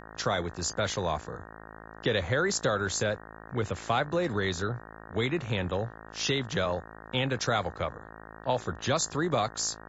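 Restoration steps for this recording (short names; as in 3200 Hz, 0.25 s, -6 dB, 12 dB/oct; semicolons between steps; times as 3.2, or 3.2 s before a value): de-hum 54.4 Hz, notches 34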